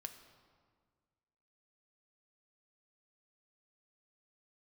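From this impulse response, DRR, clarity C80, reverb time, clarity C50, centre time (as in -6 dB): 6.0 dB, 11.0 dB, 1.7 s, 9.5 dB, 19 ms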